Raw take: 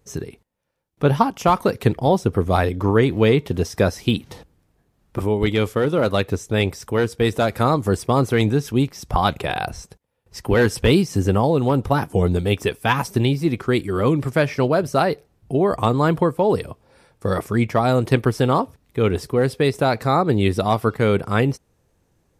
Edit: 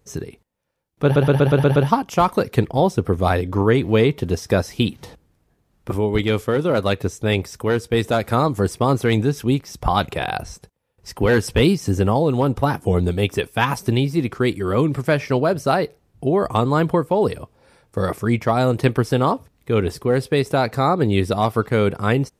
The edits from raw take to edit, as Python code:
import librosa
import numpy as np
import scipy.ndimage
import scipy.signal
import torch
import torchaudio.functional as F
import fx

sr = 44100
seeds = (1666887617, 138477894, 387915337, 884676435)

y = fx.edit(x, sr, fx.stutter(start_s=1.04, slice_s=0.12, count=7), tone=tone)